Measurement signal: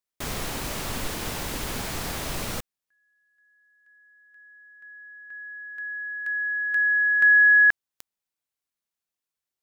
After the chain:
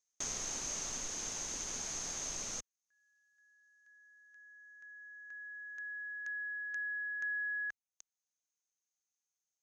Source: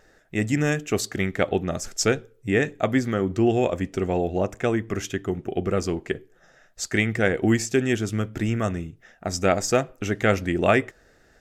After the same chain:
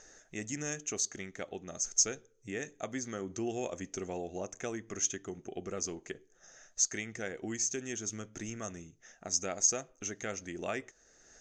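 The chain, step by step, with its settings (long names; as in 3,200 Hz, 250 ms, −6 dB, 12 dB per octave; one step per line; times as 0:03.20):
downward compressor 1.5 to 1, threshold −54 dBFS
low-pass with resonance 6,400 Hz, resonance Q 15
parametric band 84 Hz −7.5 dB 1.9 octaves
speech leveller within 5 dB 2 s
level −6 dB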